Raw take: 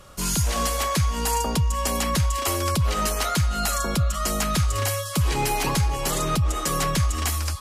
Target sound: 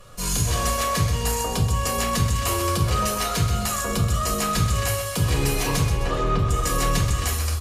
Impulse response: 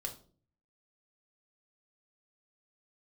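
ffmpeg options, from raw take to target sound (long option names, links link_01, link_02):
-filter_complex "[0:a]asettb=1/sr,asplit=3[link_01][link_02][link_03];[link_01]atrim=end=5.884[link_04];[link_02]atrim=start=5.88:end=6.39,asetpts=PTS-STARTPTS,afade=type=in:duration=0.004:curve=qsin,afade=type=out:start_time=0.506:duration=0.004:curve=qsin,lowpass=2800[link_05];[link_03]atrim=start=6.386[link_06];[link_04][link_05]acrossfade=duration=0.004:curve1=hsin:curve2=qsin[link_07];[link_07][link_06]acrossfade=duration=0.004:curve1=qsin:curve2=hsin,aecho=1:1:129|258|387|516|645:0.398|0.175|0.0771|0.0339|0.0149[link_08];[1:a]atrim=start_sample=2205,afade=type=out:start_time=0.13:duration=0.01,atrim=end_sample=6174,asetrate=36603,aresample=44100[link_09];[link_08][link_09]afir=irnorm=-1:irlink=0"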